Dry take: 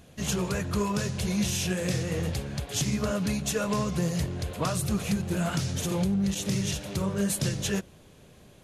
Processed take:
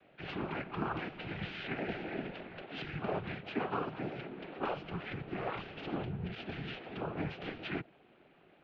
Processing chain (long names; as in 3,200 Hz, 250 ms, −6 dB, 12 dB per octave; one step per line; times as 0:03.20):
cochlear-implant simulation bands 8
0:03.34–0:04.41: Chebyshev high-pass filter 320 Hz, order 2
single-sideband voice off tune −140 Hz 340–3,200 Hz
level −3.5 dB